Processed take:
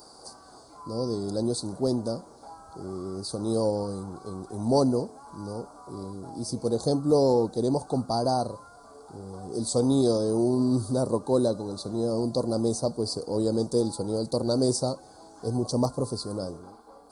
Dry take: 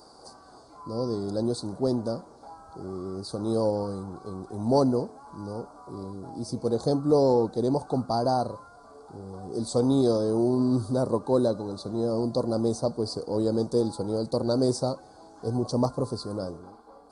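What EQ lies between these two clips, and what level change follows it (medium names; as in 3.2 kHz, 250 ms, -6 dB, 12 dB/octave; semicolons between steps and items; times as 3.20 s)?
treble shelf 6.4 kHz +11 dB; dynamic bell 1.7 kHz, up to -4 dB, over -43 dBFS, Q 0.91; 0.0 dB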